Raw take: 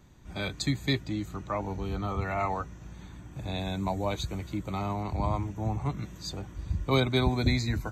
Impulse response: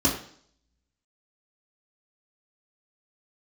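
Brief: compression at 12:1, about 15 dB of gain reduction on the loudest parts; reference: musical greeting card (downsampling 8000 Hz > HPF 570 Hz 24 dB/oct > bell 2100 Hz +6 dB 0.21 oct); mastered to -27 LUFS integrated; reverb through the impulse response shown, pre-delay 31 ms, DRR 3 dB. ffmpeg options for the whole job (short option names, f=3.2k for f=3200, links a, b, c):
-filter_complex "[0:a]acompressor=threshold=-35dB:ratio=12,asplit=2[a][b];[1:a]atrim=start_sample=2205,adelay=31[c];[b][c]afir=irnorm=-1:irlink=0,volume=-16dB[d];[a][d]amix=inputs=2:normalize=0,aresample=8000,aresample=44100,highpass=f=570:w=0.5412,highpass=f=570:w=1.3066,equalizer=f=2.1k:t=o:w=0.21:g=6,volume=16.5dB"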